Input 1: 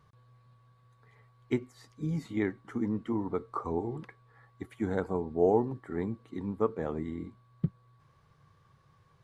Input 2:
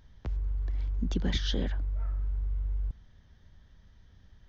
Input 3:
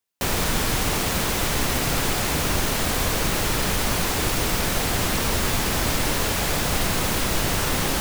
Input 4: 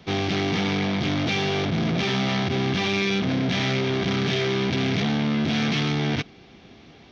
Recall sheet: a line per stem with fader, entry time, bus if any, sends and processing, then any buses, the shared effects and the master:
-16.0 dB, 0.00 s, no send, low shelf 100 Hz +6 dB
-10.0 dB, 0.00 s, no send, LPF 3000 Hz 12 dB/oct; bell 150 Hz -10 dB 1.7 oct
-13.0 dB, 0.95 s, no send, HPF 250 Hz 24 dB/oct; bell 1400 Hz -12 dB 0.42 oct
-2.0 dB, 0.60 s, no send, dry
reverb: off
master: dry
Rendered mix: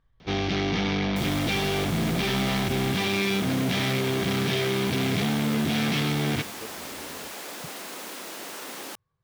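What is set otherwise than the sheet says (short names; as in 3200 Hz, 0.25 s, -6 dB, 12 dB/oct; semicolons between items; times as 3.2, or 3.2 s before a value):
stem 3: missing bell 1400 Hz -12 dB 0.42 oct; stem 4: entry 0.60 s -> 0.20 s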